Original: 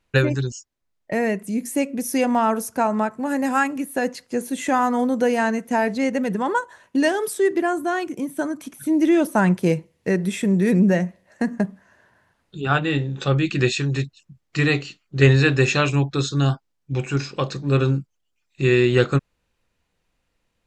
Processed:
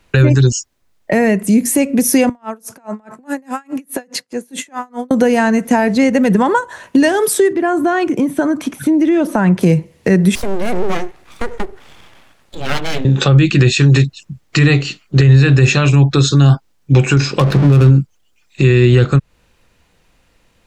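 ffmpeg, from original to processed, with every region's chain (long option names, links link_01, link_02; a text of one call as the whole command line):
ffmpeg -i in.wav -filter_complex "[0:a]asettb=1/sr,asplit=3[link_01][link_02][link_03];[link_01]atrim=end=2.294[link_04];[link_02]atrim=start=2.29:end=5.11,asetpts=PTS-STARTPTS,afade=type=in:duration=0.004:curve=qsin,afade=type=out:start_time=2.816:duration=0.004:curve=qsin,highpass=frequency=110:width=0.5412,highpass=frequency=110:width=1.3066,acompressor=threshold=-31dB:ratio=12:attack=3.2:release=140:knee=1:detection=peak,aeval=exprs='val(0)*pow(10,-32*(0.5-0.5*cos(2*PI*4.8*n/s))/20)':channel_layout=same[link_05];[link_03]atrim=start=5.106[link_06];[link_04][link_05]acrossfade=duration=0.004:curve1=hsin:curve2=qsin[link_07];[link_07][link_06]acrossfade=duration=0.004:curve1=qsin:curve2=hsin,asettb=1/sr,asplit=3[link_08][link_09][link_10];[link_08]atrim=end=7.534[link_11];[link_09]atrim=start=7.53:end=9.61,asetpts=PTS-STARTPTS,afade=type=in:duration=0.004:curve=qsin,afade=type=out:start_time=2.076:duration=0.004:curve=qsin,aemphasis=mode=reproduction:type=50kf,acompressor=threshold=-28dB:ratio=2:attack=3.2:release=140:knee=1:detection=peak[link_12];[link_10]atrim=start=9.606[link_13];[link_11][link_12]acrossfade=duration=0.004:curve1=hsin:curve2=qsin[link_14];[link_14][link_13]acrossfade=duration=0.004:curve1=qsin:curve2=hsin,asettb=1/sr,asplit=3[link_15][link_16][link_17];[link_15]atrim=end=10.354[link_18];[link_16]atrim=start=10.35:end=13.05,asetpts=PTS-STARTPTS,afade=type=in:duration=0.004:curve=qsin,afade=type=out:start_time=2.696:duration=0.004:curve=qsin,acompressor=threshold=-52dB:ratio=1.5:attack=3.2:release=140:knee=1:detection=peak,aeval=exprs='abs(val(0))':channel_layout=same[link_19];[link_17]atrim=start=13.046[link_20];[link_18][link_19]acrossfade=duration=0.004:curve1=hsin:curve2=qsin[link_21];[link_21][link_20]acrossfade=duration=0.004:curve1=qsin:curve2=hsin,asettb=1/sr,asplit=3[link_22][link_23][link_24];[link_22]atrim=end=17.394[link_25];[link_23]atrim=start=17.39:end=17.9,asetpts=PTS-STARTPTS,afade=type=in:duration=0.004:curve=qsin,afade=type=out:start_time=0.506:duration=0.004:curve=qsin,aeval=exprs='val(0)+0.5*0.0376*sgn(val(0))':channel_layout=same,equalizer=frequency=170:width=4.2:gain=5,adynamicsmooth=sensitivity=3:basefreq=620[link_26];[link_24]atrim=start=17.896[link_27];[link_25][link_26]acrossfade=duration=0.004:curve1=hsin:curve2=qsin[link_28];[link_28][link_27]acrossfade=duration=0.004:curve1=qsin:curve2=hsin,acrossover=split=160[link_29][link_30];[link_30]acompressor=threshold=-27dB:ratio=6[link_31];[link_29][link_31]amix=inputs=2:normalize=0,alimiter=level_in=17.5dB:limit=-1dB:release=50:level=0:latency=1,volume=-1dB" out.wav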